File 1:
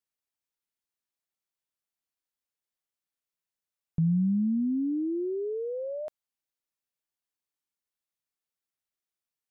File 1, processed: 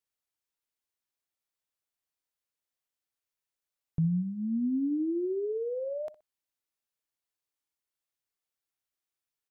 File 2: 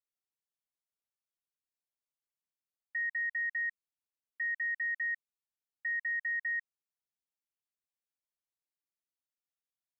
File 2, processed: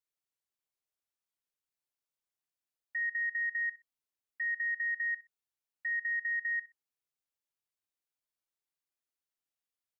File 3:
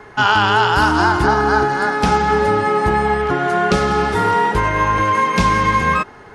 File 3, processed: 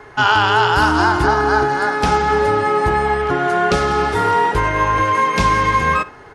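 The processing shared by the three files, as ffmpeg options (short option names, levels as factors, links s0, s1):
-filter_complex "[0:a]equalizer=f=200:t=o:w=0.21:g=-12,asplit=2[s0][s1];[s1]adelay=62,lowpass=f=3200:p=1,volume=0.141,asplit=2[s2][s3];[s3]adelay=62,lowpass=f=3200:p=1,volume=0.26[s4];[s0][s2][s4]amix=inputs=3:normalize=0"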